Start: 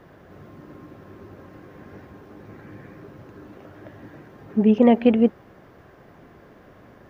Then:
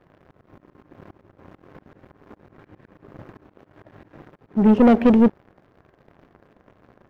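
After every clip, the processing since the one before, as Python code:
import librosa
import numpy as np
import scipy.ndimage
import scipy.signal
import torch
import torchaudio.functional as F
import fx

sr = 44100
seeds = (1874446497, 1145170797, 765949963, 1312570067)

y = fx.leveller(x, sr, passes=3)
y = fx.auto_swell(y, sr, attack_ms=206.0)
y = fx.high_shelf(y, sr, hz=2500.0, db=-11.0)
y = y * 10.0 ** (-3.5 / 20.0)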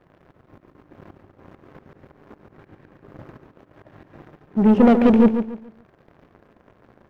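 y = fx.echo_feedback(x, sr, ms=142, feedback_pct=30, wet_db=-8.5)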